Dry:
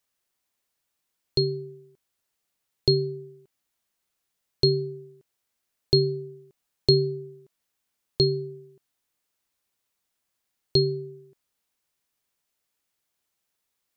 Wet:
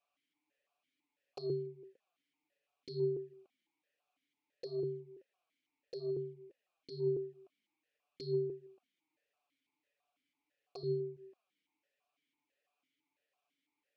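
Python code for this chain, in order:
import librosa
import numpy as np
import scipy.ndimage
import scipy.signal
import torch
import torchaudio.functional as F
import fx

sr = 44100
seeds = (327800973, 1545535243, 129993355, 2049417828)

y = fx.over_compress(x, sr, threshold_db=-28.0, ratio=-1.0)
y = fx.env_flanger(y, sr, rest_ms=7.0, full_db=-24.5)
y = fx.vowel_held(y, sr, hz=6.0)
y = y * 10.0 ** (9.5 / 20.0)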